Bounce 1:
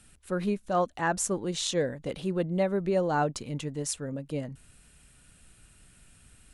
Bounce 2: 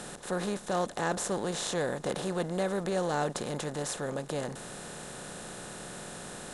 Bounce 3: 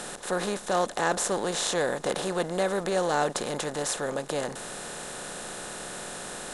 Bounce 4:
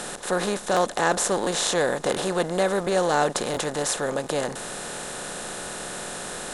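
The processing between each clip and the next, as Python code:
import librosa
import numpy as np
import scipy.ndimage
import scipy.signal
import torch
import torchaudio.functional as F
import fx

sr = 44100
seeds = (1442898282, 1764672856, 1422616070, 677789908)

y1 = fx.bin_compress(x, sr, power=0.4)
y1 = y1 * 10.0 ** (-7.5 / 20.0)
y2 = fx.peak_eq(y1, sr, hz=110.0, db=-9.0, octaves=2.5)
y2 = y2 * 10.0 ** (6.0 / 20.0)
y3 = fx.buffer_crackle(y2, sr, first_s=0.72, period_s=0.7, block=1024, kind='repeat')
y3 = y3 * 10.0 ** (4.0 / 20.0)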